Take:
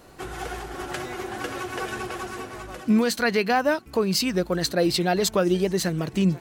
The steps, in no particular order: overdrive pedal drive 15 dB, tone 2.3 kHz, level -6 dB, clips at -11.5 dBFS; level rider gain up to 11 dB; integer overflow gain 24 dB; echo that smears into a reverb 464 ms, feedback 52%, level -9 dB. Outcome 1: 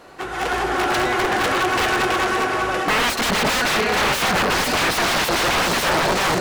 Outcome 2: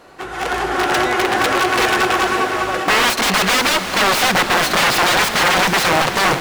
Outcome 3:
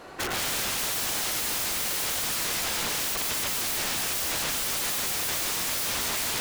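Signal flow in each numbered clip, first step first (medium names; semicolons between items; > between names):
echo that smears into a reverb > integer overflow > level rider > overdrive pedal; integer overflow > overdrive pedal > echo that smears into a reverb > level rider; overdrive pedal > echo that smears into a reverb > level rider > integer overflow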